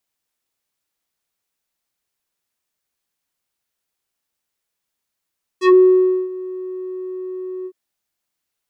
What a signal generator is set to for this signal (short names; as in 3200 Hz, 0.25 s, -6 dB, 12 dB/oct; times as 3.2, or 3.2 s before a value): synth note square F#4 12 dB/oct, low-pass 430 Hz, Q 1.3, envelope 4.5 oct, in 0.12 s, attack 76 ms, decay 0.60 s, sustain -20 dB, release 0.06 s, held 2.05 s